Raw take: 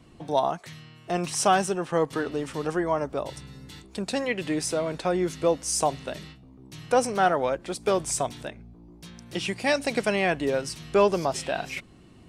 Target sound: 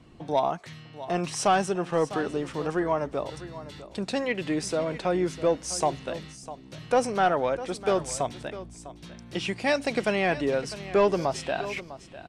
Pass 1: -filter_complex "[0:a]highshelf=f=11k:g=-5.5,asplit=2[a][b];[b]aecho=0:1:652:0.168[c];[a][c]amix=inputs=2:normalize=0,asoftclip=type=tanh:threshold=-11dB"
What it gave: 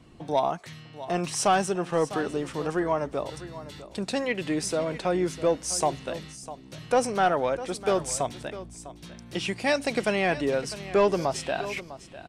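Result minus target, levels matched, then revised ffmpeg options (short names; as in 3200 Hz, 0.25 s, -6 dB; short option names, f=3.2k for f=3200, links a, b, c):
8000 Hz band +3.0 dB
-filter_complex "[0:a]highshelf=f=11k:g=-17.5,asplit=2[a][b];[b]aecho=0:1:652:0.168[c];[a][c]amix=inputs=2:normalize=0,asoftclip=type=tanh:threshold=-11dB"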